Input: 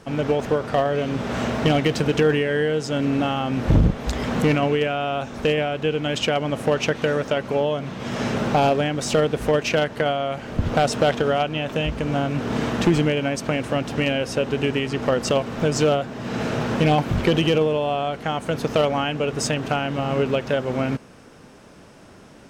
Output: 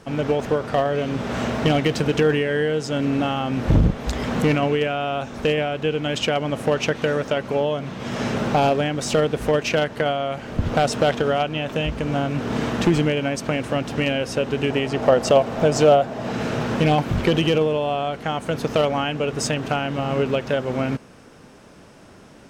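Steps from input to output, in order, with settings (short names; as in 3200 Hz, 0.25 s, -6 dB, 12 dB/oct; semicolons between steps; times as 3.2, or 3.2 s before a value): 14.7–16.32 bell 670 Hz +9 dB 0.81 oct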